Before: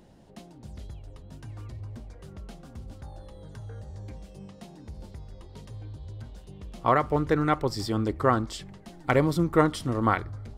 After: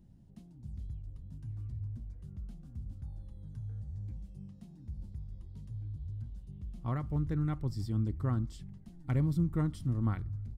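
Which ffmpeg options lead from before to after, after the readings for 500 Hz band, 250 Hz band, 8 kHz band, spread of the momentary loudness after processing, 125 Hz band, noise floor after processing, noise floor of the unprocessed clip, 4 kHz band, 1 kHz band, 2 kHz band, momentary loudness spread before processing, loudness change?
-19.5 dB, -7.5 dB, under -15 dB, 16 LU, -0.5 dB, -55 dBFS, -50 dBFS, under -15 dB, -20.5 dB, -20.0 dB, 21 LU, -11.5 dB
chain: -af "firequalizer=gain_entry='entry(130,0);entry(450,-21);entry(10000,-14)':delay=0.05:min_phase=1"

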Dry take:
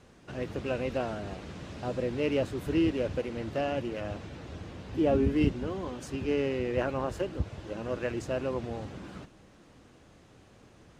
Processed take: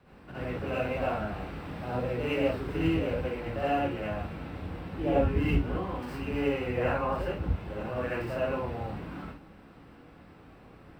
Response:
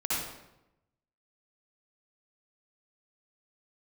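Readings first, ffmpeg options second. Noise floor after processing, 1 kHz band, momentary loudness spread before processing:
-53 dBFS, +5.0 dB, 15 LU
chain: -filter_complex "[0:a]acrossover=split=200|420|3600[s0][s1][s2][s3];[s1]acompressor=threshold=0.00355:ratio=6[s4];[s3]acrusher=samples=13:mix=1:aa=0.000001[s5];[s0][s4][s2][s5]amix=inputs=4:normalize=0[s6];[1:a]atrim=start_sample=2205,atrim=end_sample=6174[s7];[s6][s7]afir=irnorm=-1:irlink=0,volume=0.75"

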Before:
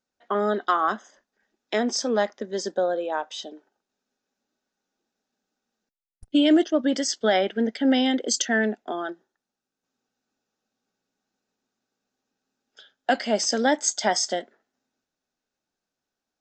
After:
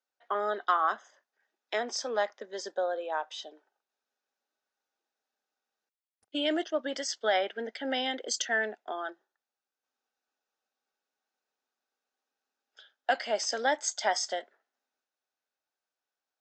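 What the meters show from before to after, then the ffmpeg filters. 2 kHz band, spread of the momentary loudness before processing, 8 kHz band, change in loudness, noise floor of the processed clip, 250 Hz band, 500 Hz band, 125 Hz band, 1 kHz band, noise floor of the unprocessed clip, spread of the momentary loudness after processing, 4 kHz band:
-3.5 dB, 11 LU, -8.0 dB, -7.5 dB, under -85 dBFS, -16.0 dB, -7.0 dB, no reading, -4.0 dB, under -85 dBFS, 10 LU, -5.5 dB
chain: -af "highpass=590,highshelf=f=6100:g=-9.5,volume=0.708"

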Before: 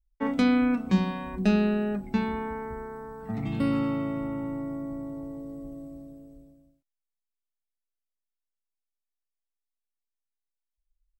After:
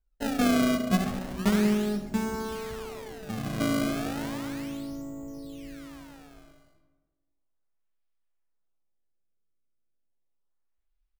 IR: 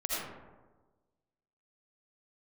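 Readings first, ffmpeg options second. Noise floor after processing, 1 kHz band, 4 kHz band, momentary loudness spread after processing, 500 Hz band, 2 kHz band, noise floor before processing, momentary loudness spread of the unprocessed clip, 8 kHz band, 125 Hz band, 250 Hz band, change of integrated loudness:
-76 dBFS, 0.0 dB, +5.0 dB, 17 LU, 0.0 dB, +1.0 dB, under -85 dBFS, 17 LU, no reading, -1.5 dB, -1.5 dB, -0.5 dB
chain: -filter_complex "[0:a]acrusher=samples=28:mix=1:aa=0.000001:lfo=1:lforange=44.8:lforate=0.34,asplit=4[s0][s1][s2][s3];[s1]adelay=179,afreqshift=-58,volume=0.0631[s4];[s2]adelay=358,afreqshift=-116,volume=0.0266[s5];[s3]adelay=537,afreqshift=-174,volume=0.0111[s6];[s0][s4][s5][s6]amix=inputs=4:normalize=0,asplit=2[s7][s8];[1:a]atrim=start_sample=2205[s9];[s8][s9]afir=irnorm=-1:irlink=0,volume=0.266[s10];[s7][s10]amix=inputs=2:normalize=0,volume=0.631"

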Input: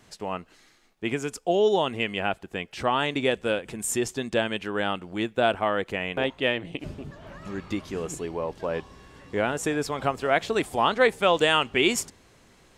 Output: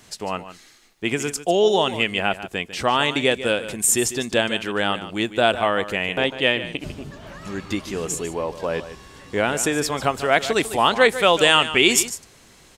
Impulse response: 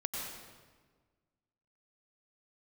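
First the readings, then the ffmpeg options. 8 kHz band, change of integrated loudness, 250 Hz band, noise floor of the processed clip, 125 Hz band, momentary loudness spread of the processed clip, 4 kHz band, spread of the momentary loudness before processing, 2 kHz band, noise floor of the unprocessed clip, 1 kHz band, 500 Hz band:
+11.0 dB, +5.5 dB, +4.0 dB, -51 dBFS, +4.0 dB, 14 LU, +8.5 dB, 13 LU, +6.5 dB, -59 dBFS, +4.5 dB, +4.0 dB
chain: -af "highshelf=f=3000:g=8.5,aecho=1:1:148:0.224,volume=1.5"

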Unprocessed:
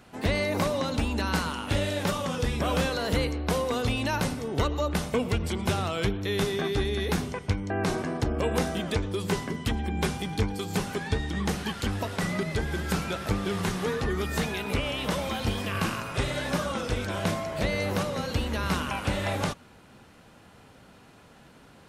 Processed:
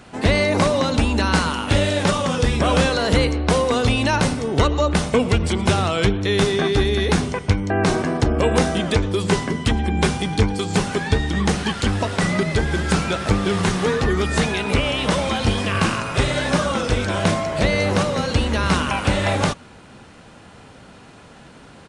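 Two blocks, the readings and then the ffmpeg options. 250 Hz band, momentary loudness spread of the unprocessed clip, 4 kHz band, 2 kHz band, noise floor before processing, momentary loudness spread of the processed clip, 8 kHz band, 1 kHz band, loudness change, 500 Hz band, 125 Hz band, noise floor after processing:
+9.0 dB, 3 LU, +9.0 dB, +9.0 dB, -54 dBFS, 3 LU, +8.5 dB, +9.0 dB, +9.0 dB, +9.0 dB, +9.0 dB, -45 dBFS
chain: -af "aresample=22050,aresample=44100,volume=2.82"

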